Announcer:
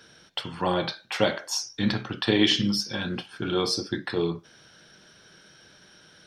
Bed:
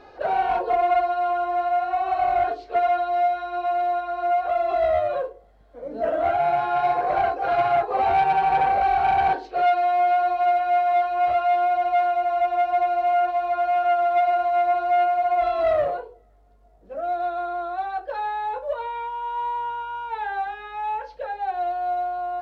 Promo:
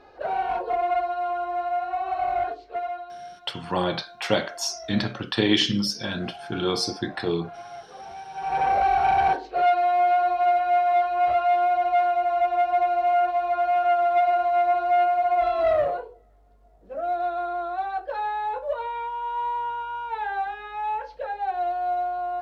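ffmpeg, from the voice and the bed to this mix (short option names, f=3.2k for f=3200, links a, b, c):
-filter_complex "[0:a]adelay=3100,volume=0.5dB[a];[1:a]volume=15.5dB,afade=t=out:st=2.39:d=0.82:silence=0.158489,afade=t=in:st=8.33:d=0.4:silence=0.105925[b];[a][b]amix=inputs=2:normalize=0"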